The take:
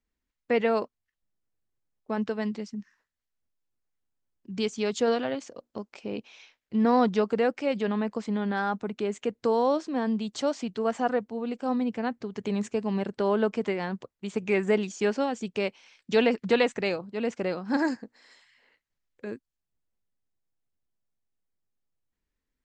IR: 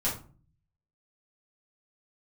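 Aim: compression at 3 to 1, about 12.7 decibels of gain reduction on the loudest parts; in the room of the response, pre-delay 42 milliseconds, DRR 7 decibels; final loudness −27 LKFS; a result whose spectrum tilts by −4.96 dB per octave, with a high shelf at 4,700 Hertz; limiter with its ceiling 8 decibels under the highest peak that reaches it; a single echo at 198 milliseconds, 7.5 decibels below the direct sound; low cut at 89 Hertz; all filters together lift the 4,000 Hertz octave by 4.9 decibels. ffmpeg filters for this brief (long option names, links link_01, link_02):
-filter_complex "[0:a]highpass=89,equalizer=frequency=4000:width_type=o:gain=4.5,highshelf=frequency=4700:gain=4,acompressor=threshold=-35dB:ratio=3,alimiter=level_in=5dB:limit=-24dB:level=0:latency=1,volume=-5dB,aecho=1:1:198:0.422,asplit=2[link_01][link_02];[1:a]atrim=start_sample=2205,adelay=42[link_03];[link_02][link_03]afir=irnorm=-1:irlink=0,volume=-14dB[link_04];[link_01][link_04]amix=inputs=2:normalize=0,volume=11dB"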